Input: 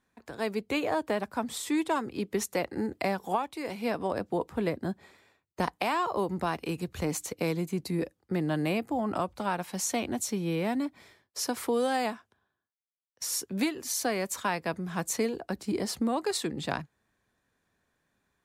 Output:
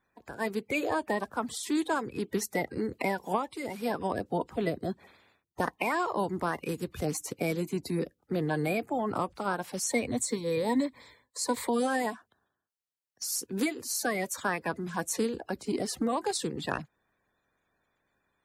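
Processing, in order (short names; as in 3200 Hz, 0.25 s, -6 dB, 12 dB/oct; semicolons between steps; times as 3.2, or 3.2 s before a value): bin magnitudes rounded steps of 30 dB; 9.89–11.69 ripple EQ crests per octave 1, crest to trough 11 dB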